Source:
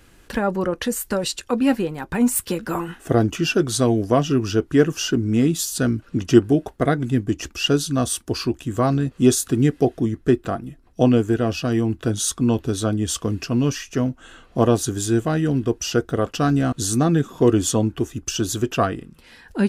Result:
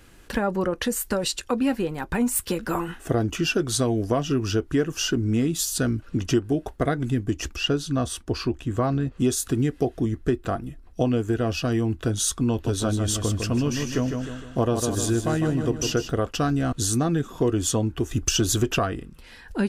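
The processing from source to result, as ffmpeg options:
-filter_complex "[0:a]asettb=1/sr,asplit=3[a][b][c];[a]atrim=end=7.564[d];[b]atrim=start=7.56:end=9.2,asetpts=PTS-STARTPTS,afade=t=in:d=0.004:c=qsin,afade=t=out:st=1.636:d=0.004:c=qsin,lowpass=f=3.2k:p=1[e];[c]atrim=start=9.196[f];[d][e]acrossfade=d=0.004:c1=hsin:c2=qsin[g];[g][f]acrossfade=d=0.004:c1=qsin:c2=hsin,asettb=1/sr,asplit=3[h][i][j];[h]atrim=end=12.514[k];[i]atrim=start=12.51:end=16.1,asetpts=PTS-STARTPTS,afade=t=in:d=0.004:c=qsin,afade=t=out:st=3.586:d=0.004:c=qsin,aecho=1:1:153|306|459|612|765:0.447|0.192|0.0826|0.0355|0.0153,atrim=end_sample=158319[l];[j]atrim=start=16.096[m];[k][l]acrossfade=d=0.004:c1=hsin:c2=qsin[n];[n][m]acrossfade=d=0.004:c1=qsin:c2=hsin,asettb=1/sr,asplit=3[o][p][q];[o]atrim=end=18.114[r];[p]atrim=start=18.11:end=18.79,asetpts=PTS-STARTPTS,afade=t=in:d=0.004:c=qsin,afade=t=out:st=0.676:d=0.004:c=qsin,acontrast=87[s];[q]atrim=start=18.786[t];[r][s]acrossfade=d=0.004:c1=hsin:c2=qsin[u];[u][t]acrossfade=d=0.004:c1=qsin:c2=hsin,asubboost=boost=2.5:cutoff=85,acompressor=threshold=-20dB:ratio=3"

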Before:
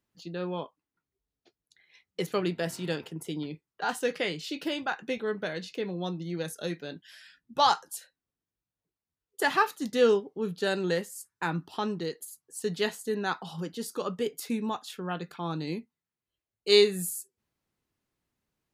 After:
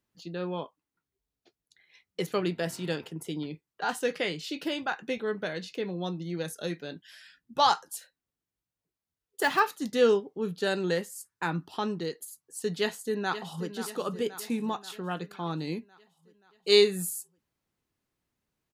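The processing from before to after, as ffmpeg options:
-filter_complex "[0:a]asettb=1/sr,asplit=3[a][b][c];[a]atrim=end=7.954[d];[b]atrim=start=7.95:end=9.6,asetpts=PTS-STARTPTS,afade=t=in:d=0.004:c=qsin,afade=t=out:st=1.646:d=0.004:c=qsin,acrusher=bits=6:mode=log:mix=0:aa=0.000001[e];[c]atrim=start=9.596[f];[d][e]acrossfade=d=0.004:c1=hsin:c2=qsin[g];[g][f]acrossfade=d=0.004:c1=qsin:c2=hsin,asplit=2[h][i];[i]afade=t=in:st=12.79:d=0.01,afade=t=out:st=13.69:d=0.01,aecho=0:1:530|1060|1590|2120|2650|3180|3710:0.266073|0.159644|0.0957861|0.0574717|0.034483|0.0206898|0.0124139[j];[h][j]amix=inputs=2:normalize=0"

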